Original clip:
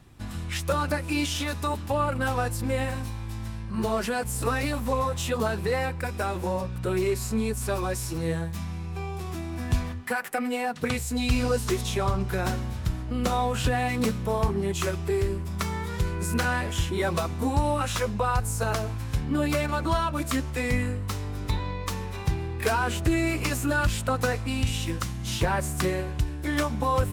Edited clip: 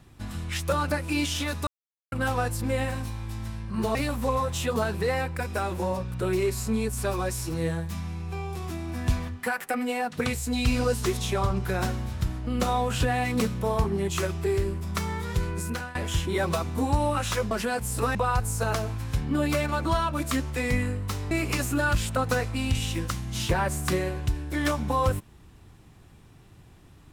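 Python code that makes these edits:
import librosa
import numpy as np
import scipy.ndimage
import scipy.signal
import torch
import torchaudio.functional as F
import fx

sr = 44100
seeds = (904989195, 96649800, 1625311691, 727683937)

y = fx.edit(x, sr, fx.silence(start_s=1.67, length_s=0.45),
    fx.move(start_s=3.95, length_s=0.64, to_s=18.15),
    fx.fade_out_to(start_s=16.13, length_s=0.46, floor_db=-19.5),
    fx.cut(start_s=21.31, length_s=1.92), tone=tone)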